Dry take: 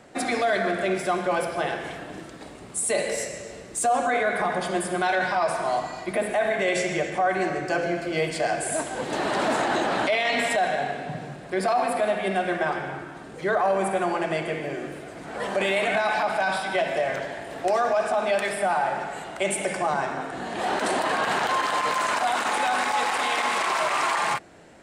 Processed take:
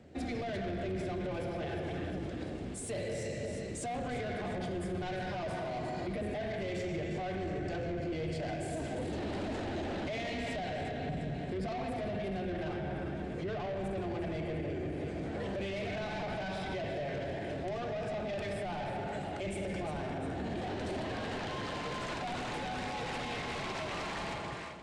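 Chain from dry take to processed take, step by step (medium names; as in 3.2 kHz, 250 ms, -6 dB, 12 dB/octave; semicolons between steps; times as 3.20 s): octave divider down 2 oct, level -3 dB; high-pass 78 Hz; on a send: echo whose repeats swap between lows and highs 175 ms, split 1 kHz, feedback 70%, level -8 dB; on the sum: saturation -25.5 dBFS, distortion -9 dB; peaking EQ 1.1 kHz -14.5 dB 1.9 oct; level rider gain up to 6 dB; tape spacing loss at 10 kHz 22 dB; peak limiter -30 dBFS, peak gain reduction 9 dB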